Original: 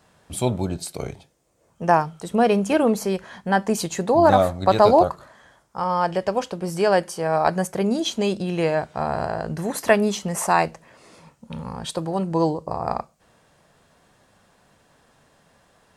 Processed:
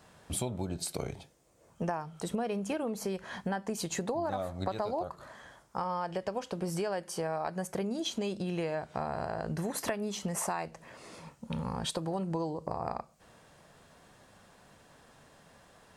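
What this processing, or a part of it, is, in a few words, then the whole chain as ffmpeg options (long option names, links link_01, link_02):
serial compression, leveller first: -af "acompressor=threshold=-26dB:ratio=1.5,acompressor=threshold=-31dB:ratio=6"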